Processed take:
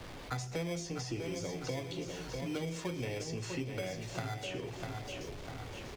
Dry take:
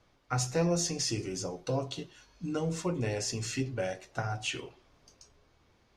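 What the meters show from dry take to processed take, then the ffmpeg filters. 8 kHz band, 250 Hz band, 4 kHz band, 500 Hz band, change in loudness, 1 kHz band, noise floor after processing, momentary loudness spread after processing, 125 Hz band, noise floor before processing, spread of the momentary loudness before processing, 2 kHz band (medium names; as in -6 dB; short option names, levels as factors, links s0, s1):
-10.0 dB, -4.5 dB, -6.0 dB, -5.0 dB, -6.0 dB, -5.0 dB, -47 dBFS, 5 LU, -5.0 dB, -67 dBFS, 12 LU, -2.5 dB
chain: -filter_complex "[0:a]aeval=exprs='val(0)+0.5*0.00668*sgn(val(0))':c=same,acrossover=split=260|1400|1900[s0][s1][s2][s3];[s1]acrusher=samples=16:mix=1:aa=0.000001[s4];[s0][s4][s2][s3]amix=inputs=4:normalize=0,lowpass=f=2800:p=1,aecho=1:1:648|1296|1944|2592:0.316|0.13|0.0532|0.0218,acrossover=split=370|1800[s5][s6][s7];[s5]acompressor=threshold=0.00631:ratio=4[s8];[s6]acompressor=threshold=0.00501:ratio=4[s9];[s7]acompressor=threshold=0.00355:ratio=4[s10];[s8][s9][s10]amix=inputs=3:normalize=0,volume=1.5"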